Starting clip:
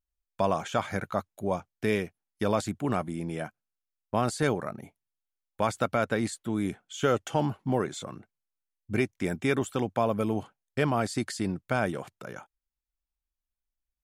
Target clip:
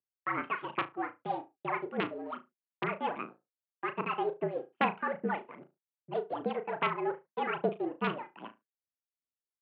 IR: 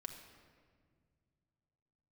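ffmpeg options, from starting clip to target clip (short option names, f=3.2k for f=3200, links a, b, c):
-filter_complex "[0:a]acrossover=split=2200[a][b];[b]acompressor=threshold=-54dB:ratio=6[c];[a][c]amix=inputs=2:normalize=0,aphaser=in_gain=1:out_gain=1:delay=4.8:decay=0.7:speed=1.7:type=sinusoidal,adynamicsmooth=sensitivity=5.5:basefreq=640,atempo=0.73,aeval=exprs='(mod(2.37*val(0)+1,2)-1)/2.37':c=same,asplit=2[d][e];[e]adelay=72,lowpass=f=1.4k:p=1,volume=-8.5dB,asplit=2[f][g];[g]adelay=72,lowpass=f=1.4k:p=1,volume=0.34,asplit=2[h][i];[i]adelay=72,lowpass=f=1.4k:p=1,volume=0.34,asplit=2[j][k];[k]adelay=72,lowpass=f=1.4k:p=1,volume=0.34[l];[f][h][j][l]amix=inputs=4:normalize=0[m];[d][m]amix=inputs=2:normalize=0,asetrate=88200,aresample=44100,highpass=f=220:t=q:w=0.5412,highpass=f=220:t=q:w=1.307,lowpass=f=2.9k:t=q:w=0.5176,lowpass=f=2.9k:t=q:w=0.7071,lowpass=f=2.9k:t=q:w=1.932,afreqshift=-55,volume=-9dB"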